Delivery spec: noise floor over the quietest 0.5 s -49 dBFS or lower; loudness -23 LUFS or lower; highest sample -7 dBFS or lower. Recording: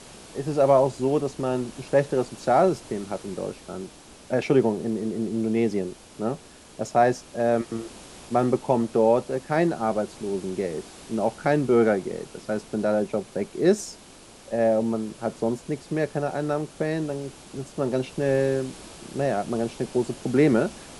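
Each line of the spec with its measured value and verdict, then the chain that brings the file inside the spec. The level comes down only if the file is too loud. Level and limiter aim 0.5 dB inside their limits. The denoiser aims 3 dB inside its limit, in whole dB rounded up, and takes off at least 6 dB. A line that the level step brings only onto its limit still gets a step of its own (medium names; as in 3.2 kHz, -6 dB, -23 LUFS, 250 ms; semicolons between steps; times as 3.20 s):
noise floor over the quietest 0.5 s -48 dBFS: fail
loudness -25.0 LUFS: pass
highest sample -6.5 dBFS: fail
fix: noise reduction 6 dB, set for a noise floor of -48 dBFS; peak limiter -7.5 dBFS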